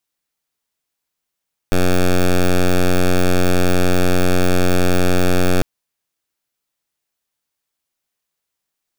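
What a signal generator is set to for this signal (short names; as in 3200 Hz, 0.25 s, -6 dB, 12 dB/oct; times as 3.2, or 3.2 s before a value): pulse 90.4 Hz, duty 9% -12.5 dBFS 3.90 s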